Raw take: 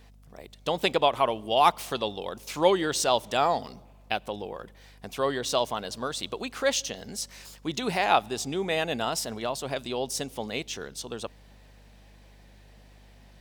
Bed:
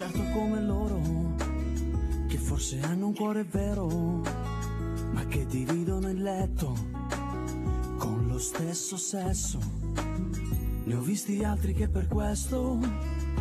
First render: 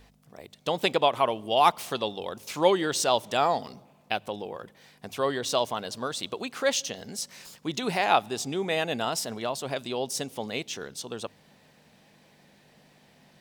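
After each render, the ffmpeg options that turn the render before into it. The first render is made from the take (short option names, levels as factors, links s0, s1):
-af "bandreject=f=50:t=h:w=4,bandreject=f=100:t=h:w=4"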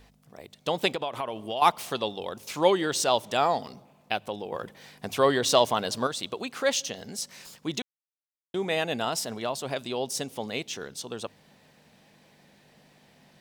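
-filter_complex "[0:a]asettb=1/sr,asplit=3[s0][s1][s2];[s0]atrim=end=0.884[s3];[s1]atrim=start=0.88:end=1.62,asetpts=PTS-STARTPTS,afade=t=in:d=0.004:c=qsin,afade=t=out:st=0.736:d=0.004:c=qsin,acompressor=threshold=0.0398:ratio=4:attack=3.2:release=140:knee=1:detection=peak[s4];[s2]atrim=start=1.616[s5];[s3][s4]acrossfade=d=0.004:c1=hsin:c2=qsin[s6];[s6][s5]acrossfade=d=0.004:c1=qsin:c2=hsin,asettb=1/sr,asplit=3[s7][s8][s9];[s7]atrim=end=4.524[s10];[s8]atrim=start=4.52:end=6.07,asetpts=PTS-STARTPTS,afade=t=in:d=0.004:c=qsin,afade=t=out:st=1.546:d=0.004:c=qsin,acontrast=37[s11];[s9]atrim=start=6.066[s12];[s10][s11]acrossfade=d=0.004:c1=hsin:c2=qsin[s13];[s13][s12]acrossfade=d=0.004:c1=qsin:c2=hsin,asplit=3[s14][s15][s16];[s14]atrim=end=7.82,asetpts=PTS-STARTPTS,afade=t=out:st=7.816:d=0.004:c=hsin[s17];[s15]atrim=start=7.82:end=8.54,asetpts=PTS-STARTPTS,volume=0[s18];[s16]atrim=start=8.54,asetpts=PTS-STARTPTS,afade=t=in:d=0.004:c=hsin[s19];[s17][s18][s19]concat=n=3:v=0:a=1"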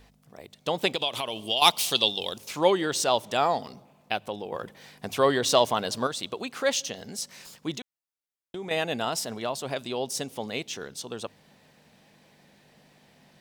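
-filter_complex "[0:a]asettb=1/sr,asplit=3[s0][s1][s2];[s0]atrim=end=0.954[s3];[s1]atrim=start=0.95:end=2.38,asetpts=PTS-STARTPTS,afade=t=in:d=0.004:c=qsin,afade=t=out:st=1.426:d=0.004:c=qsin,highshelf=f=2300:t=q:w=1.5:g=11[s4];[s2]atrim=start=2.376[s5];[s3][s4]acrossfade=d=0.004:c1=hsin:c2=qsin[s6];[s6][s5]acrossfade=d=0.004:c1=qsin:c2=hsin,asettb=1/sr,asplit=3[s7][s8][s9];[s7]atrim=end=7.724[s10];[s8]atrim=start=7.72:end=8.71,asetpts=PTS-STARTPTS,afade=t=in:d=0.004:c=qsin,afade=t=out:st=0.986:d=0.004:c=qsin,acompressor=threshold=0.02:ratio=3:attack=3.2:release=140:knee=1:detection=peak[s11];[s9]atrim=start=8.706[s12];[s10][s11]acrossfade=d=0.004:c1=hsin:c2=qsin[s13];[s13][s12]acrossfade=d=0.004:c1=qsin:c2=hsin"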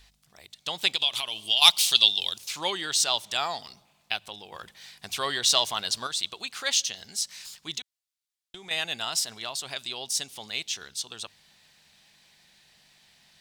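-af "equalizer=f=125:t=o:w=1:g=-8,equalizer=f=250:t=o:w=1:g=-11,equalizer=f=500:t=o:w=1:g=-12,equalizer=f=1000:t=o:w=1:g=-3,equalizer=f=4000:t=o:w=1:g=6,equalizer=f=8000:t=o:w=1:g=4"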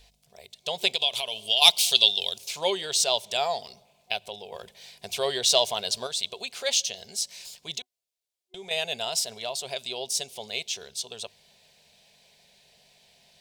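-af "superequalizer=6b=0.398:7b=2.51:8b=2.51:10b=0.398:11b=0.501"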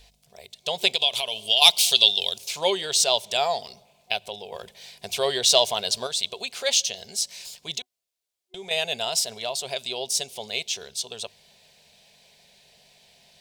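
-af "volume=1.41,alimiter=limit=0.891:level=0:latency=1"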